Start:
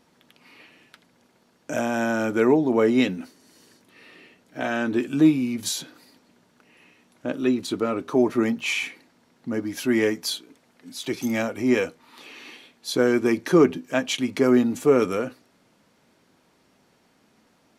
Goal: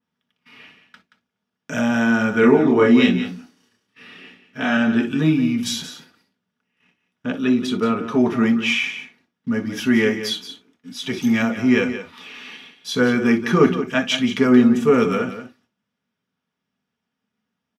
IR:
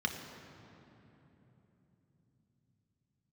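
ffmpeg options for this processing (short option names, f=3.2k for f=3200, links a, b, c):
-filter_complex "[0:a]agate=range=-23dB:threshold=-52dB:ratio=16:detection=peak,asettb=1/sr,asplit=3[a][b][c];[a]atrim=end=2.404[d];[b]atrim=start=2.4:end=4.77,asetpts=PTS-STARTPTS,afade=t=in:d=0.004:c=qsin,afade=t=out:st=2.366:d=0.004:c=qsin,asplit=2[e][f];[f]adelay=29,volume=-2dB[g];[e][g]amix=inputs=2:normalize=0,atrim=end_sample=104517[h];[c]atrim=start=4.766[i];[d][h]acrossfade=d=0.004:c1=hsin:c2=qsin[j];[j][i]acrossfade=d=0.004:c1=qsin:c2=hsin,aecho=1:1:177:0.282[k];[1:a]atrim=start_sample=2205,atrim=end_sample=3087[l];[k][l]afir=irnorm=-1:irlink=0,adynamicequalizer=threshold=0.0178:dfrequency=3500:dqfactor=0.7:tfrequency=3500:tqfactor=0.7:attack=5:release=100:ratio=0.375:range=1.5:mode=cutabove:tftype=highshelf"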